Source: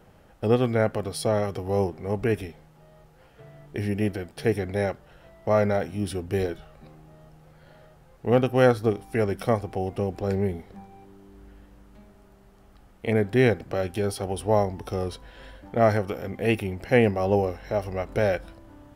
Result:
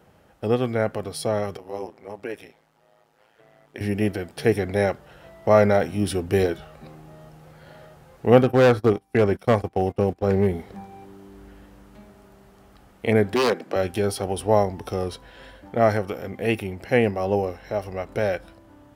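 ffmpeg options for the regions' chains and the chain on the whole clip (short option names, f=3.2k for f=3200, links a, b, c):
-filter_complex "[0:a]asettb=1/sr,asplit=3[a][b][c];[a]atrim=end=1.574[d];[b]atrim=start=1.57:end=3.81,asetpts=PTS-STARTPTS,afade=t=in:d=0.004:c=qsin,afade=t=out:st=2.236:d=0.004:c=qsin,highpass=f=540:p=1,highshelf=f=7.6k:g=-4.5,tremolo=f=110:d=0.857[e];[c]atrim=start=3.806[f];[d][e]acrossfade=d=0.004:c1=hsin:c2=qsin[g];[g][f]acrossfade=d=0.004:c1=qsin:c2=hsin,asettb=1/sr,asplit=3[h][i][j];[h]atrim=end=8.434[k];[i]atrim=start=8.43:end=10.53,asetpts=PTS-STARTPTS,afade=t=in:d=0.004:c=qsin,afade=t=out:st=2.096:d=0.004:c=qsin,agate=range=-24dB:threshold=-34dB:ratio=16:release=100:detection=peak,acrossover=split=2600[l][m];[m]acompressor=threshold=-53dB:ratio=4:attack=1:release=60[n];[l][n]amix=inputs=2:normalize=0,volume=17.5dB,asoftclip=hard,volume=-17.5dB[o];[j]atrim=start=10.526[p];[k][o]acrossfade=d=0.004:c1=hsin:c2=qsin[q];[q][p]acrossfade=d=0.004:c1=qsin:c2=hsin,asettb=1/sr,asplit=3[r][s][t];[r]atrim=end=13.344[u];[s]atrim=start=13.34:end=13.76,asetpts=PTS-STARTPTS,afade=t=in:d=0.004:c=qsin,afade=t=out:st=0.416:d=0.004:c=qsin,highpass=f=200:w=0.5412,highpass=f=200:w=1.3066,highshelf=f=10k:g=-5.5,aeval=exprs='0.133*(abs(mod(val(0)/0.133+3,4)-2)-1)':c=same[v];[t]atrim=start=13.756[w];[u][v]acrossfade=d=0.004:c1=hsin:c2=qsin[x];[x][w]acrossfade=d=0.004:c1=qsin:c2=hsin,highpass=53,lowshelf=f=180:g=-3,dynaudnorm=f=270:g=31:m=11.5dB"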